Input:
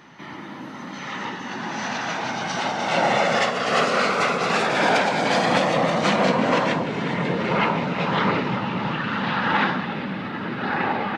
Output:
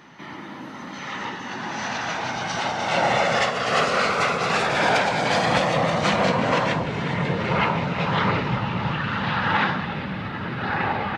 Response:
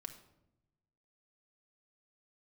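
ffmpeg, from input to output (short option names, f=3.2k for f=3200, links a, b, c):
-af "asubboost=boost=8:cutoff=84"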